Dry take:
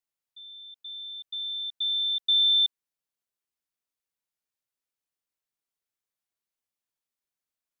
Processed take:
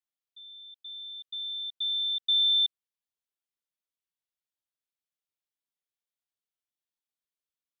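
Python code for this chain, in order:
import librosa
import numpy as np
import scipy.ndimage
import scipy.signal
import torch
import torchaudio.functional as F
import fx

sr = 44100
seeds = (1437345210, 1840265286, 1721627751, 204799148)

y = fx.peak_eq(x, sr, hz=3400.0, db=6.0, octaves=0.58)
y = F.gain(torch.from_numpy(y), -8.0).numpy()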